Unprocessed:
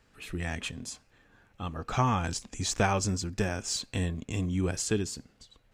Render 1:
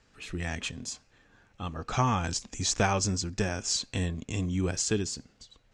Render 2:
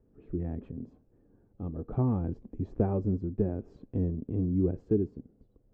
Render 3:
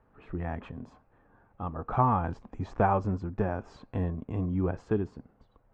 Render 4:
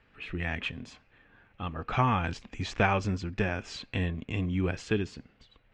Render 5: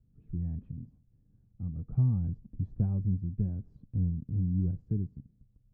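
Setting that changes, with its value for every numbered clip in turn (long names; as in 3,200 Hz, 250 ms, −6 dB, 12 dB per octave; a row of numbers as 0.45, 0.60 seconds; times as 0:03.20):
low-pass with resonance, frequency: 6,600, 380, 990, 2,600, 150 Hertz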